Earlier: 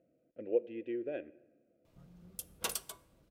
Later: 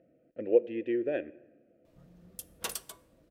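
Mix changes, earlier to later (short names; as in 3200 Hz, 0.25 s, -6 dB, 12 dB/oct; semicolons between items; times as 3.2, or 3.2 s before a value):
speech +7.5 dB; master: remove notch 1800 Hz, Q 11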